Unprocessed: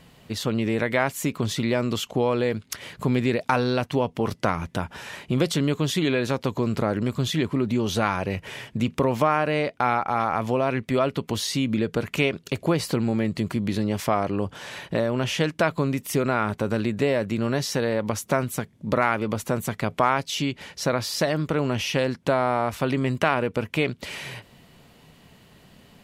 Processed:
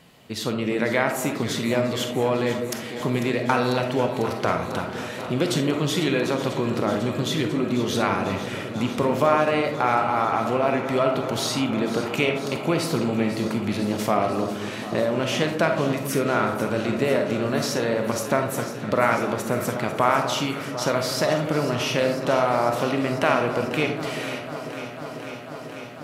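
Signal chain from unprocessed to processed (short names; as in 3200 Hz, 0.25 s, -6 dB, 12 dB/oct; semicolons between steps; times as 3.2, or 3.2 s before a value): HPF 150 Hz 6 dB/oct; echo with dull and thin repeats by turns 0.248 s, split 1400 Hz, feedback 90%, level -12 dB; digital reverb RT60 0.84 s, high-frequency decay 0.3×, pre-delay 5 ms, DRR 4.5 dB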